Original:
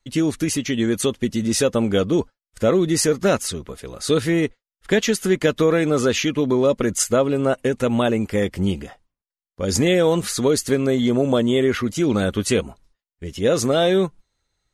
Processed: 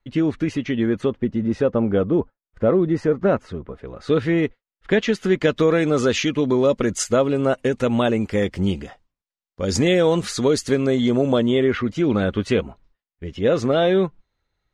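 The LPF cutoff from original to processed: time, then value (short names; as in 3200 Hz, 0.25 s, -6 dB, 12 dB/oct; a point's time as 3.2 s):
0.7 s 2400 Hz
1.27 s 1400 Hz
3.73 s 1400 Hz
4.34 s 3100 Hz
5.06 s 3100 Hz
5.8 s 6500 Hz
11.22 s 6500 Hz
11.72 s 3100 Hz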